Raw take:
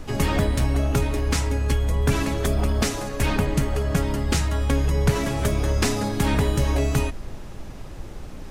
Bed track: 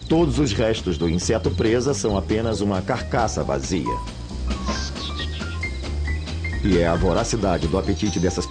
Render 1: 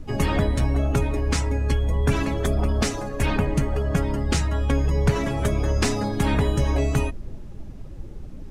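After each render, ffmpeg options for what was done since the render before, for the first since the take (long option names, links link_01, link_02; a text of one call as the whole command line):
ffmpeg -i in.wav -af "afftdn=noise_reduction=12:noise_floor=-36" out.wav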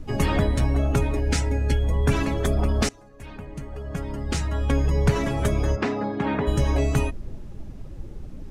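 ffmpeg -i in.wav -filter_complex "[0:a]asettb=1/sr,asplit=3[link_01][link_02][link_03];[link_01]atrim=end=1.194[link_04];[link_02]atrim=start=1.19:end=1.83,asetpts=PTS-STARTPTS,afade=type=in:duration=0.004:curve=qsin,afade=type=out:start_time=0.636:duration=0.004:curve=qsin,asuperstop=centerf=1100:order=4:qfactor=3.7[link_05];[link_03]atrim=start=1.826[link_06];[link_04][link_05]acrossfade=duration=0.004:curve1=hsin:curve2=qsin[link_07];[link_07][link_06]acrossfade=duration=0.004:curve1=qsin:curve2=hsin,asplit=3[link_08][link_09][link_10];[link_08]afade=type=out:start_time=5.75:duration=0.02[link_11];[link_09]highpass=180,lowpass=2200,afade=type=in:start_time=5.75:duration=0.02,afade=type=out:start_time=6.46:duration=0.02[link_12];[link_10]afade=type=in:start_time=6.46:duration=0.02[link_13];[link_11][link_12][link_13]amix=inputs=3:normalize=0,asplit=2[link_14][link_15];[link_14]atrim=end=2.89,asetpts=PTS-STARTPTS,afade=type=out:start_time=2.886:duration=0.004:curve=hsin:silence=0.0944061[link_16];[link_15]atrim=start=2.89,asetpts=PTS-STARTPTS,afade=type=in:duration=1.88:curve=qua:silence=0.0944061[link_17];[link_16][link_17]concat=n=2:v=0:a=1" out.wav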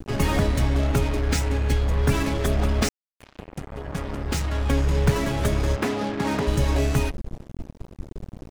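ffmpeg -i in.wav -af "acrusher=bits=4:mix=0:aa=0.5" out.wav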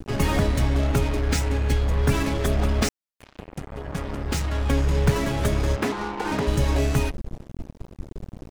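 ffmpeg -i in.wav -filter_complex "[0:a]asettb=1/sr,asplit=3[link_01][link_02][link_03];[link_01]atrim=end=5.924[link_04];[link_02]atrim=start=5.92:end=6.32,asetpts=PTS-STARTPTS,afade=type=in:duration=0.004:curve=qsin,afade=type=out:start_time=0.396:duration=0.004:curve=qsin,aeval=exprs='val(0)*sin(2*PI*620*n/s)':channel_layout=same[link_05];[link_03]atrim=start=6.316[link_06];[link_04][link_05]acrossfade=duration=0.004:curve1=hsin:curve2=qsin[link_07];[link_07][link_06]acrossfade=duration=0.004:curve1=qsin:curve2=hsin" out.wav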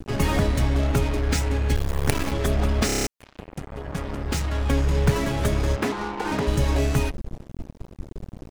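ffmpeg -i in.wav -filter_complex "[0:a]asettb=1/sr,asplit=3[link_01][link_02][link_03];[link_01]atrim=end=1.754[link_04];[link_02]atrim=start=1.75:end=2.32,asetpts=PTS-STARTPTS,afade=type=in:duration=0.004:curve=qsin,afade=type=out:start_time=0.566:duration=0.004:curve=qsin,acrusher=bits=3:dc=4:mix=0:aa=0.000001[link_05];[link_03]atrim=start=2.316[link_06];[link_04][link_05]acrossfade=duration=0.004:curve1=hsin:curve2=qsin[link_07];[link_07][link_06]acrossfade=duration=0.004:curve1=qsin:curve2=hsin,asplit=8[link_08][link_09][link_10][link_11][link_12][link_13][link_14][link_15];[link_08]atrim=end=2.892[link_16];[link_09]atrim=start=2.858:end=2.892[link_17];[link_10]atrim=start=2.858:end=2.892[link_18];[link_11]atrim=start=2.858:end=2.892[link_19];[link_12]atrim=start=2.858:end=2.892[link_20];[link_13]atrim=start=2.858:end=2.892[link_21];[link_14]atrim=start=2.858:end=2.892[link_22];[link_15]atrim=start=3.068[link_23];[link_16][link_17]acrossfade=duration=0.004:curve1=hsin:curve2=hsin[link_24];[link_24][link_18]acrossfade=duration=0.004:curve1=hsin:curve2=hsin[link_25];[link_25][link_19]acrossfade=duration=0.004:curve1=hsin:curve2=hsin[link_26];[link_26][link_20]acrossfade=duration=0.004:curve1=hsin:curve2=hsin[link_27];[link_27][link_21]acrossfade=duration=0.004:curve1=hsin:curve2=hsin[link_28];[link_28][link_22]acrossfade=duration=0.004:curve1=hsin:curve2=hsin[link_29];[link_29][link_23]acrossfade=duration=0.004:curve1=hsin:curve2=hsin" out.wav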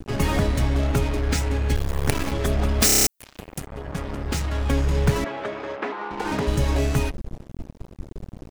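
ffmpeg -i in.wav -filter_complex "[0:a]asettb=1/sr,asplit=3[link_01][link_02][link_03];[link_01]atrim=end=2.804[link_04];[link_02]atrim=start=2.8:end=3.67,asetpts=PTS-STARTPTS,afade=type=in:duration=0.004:curve=qsin,afade=type=out:start_time=0.866:duration=0.004:curve=qsin,aemphasis=mode=production:type=75kf[link_05];[link_03]atrim=start=3.666[link_06];[link_04][link_05]acrossfade=duration=0.004:curve1=hsin:curve2=qsin[link_07];[link_07][link_06]acrossfade=duration=0.004:curve1=qsin:curve2=hsin,asettb=1/sr,asplit=3[link_08][link_09][link_10];[link_08]atrim=end=5.244[link_11];[link_09]atrim=start=5.24:end=6.11,asetpts=PTS-STARTPTS,afade=type=in:duration=0.004:curve=qsin,afade=type=out:start_time=0.866:duration=0.004:curve=qsin,highpass=420,lowpass=2400[link_12];[link_10]atrim=start=6.106[link_13];[link_11][link_12]acrossfade=duration=0.004:curve1=hsin:curve2=qsin[link_14];[link_14][link_13]acrossfade=duration=0.004:curve1=qsin:curve2=hsin" out.wav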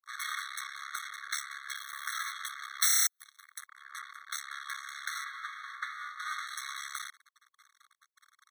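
ffmpeg -i in.wav -af "aeval=exprs='max(val(0),0)':channel_layout=same,afftfilt=real='re*eq(mod(floor(b*sr/1024/1100),2),1)':imag='im*eq(mod(floor(b*sr/1024/1100),2),1)':win_size=1024:overlap=0.75" out.wav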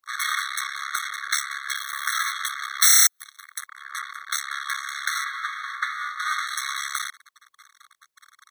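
ffmpeg -i in.wav -af "volume=11dB,alimiter=limit=-2dB:level=0:latency=1" out.wav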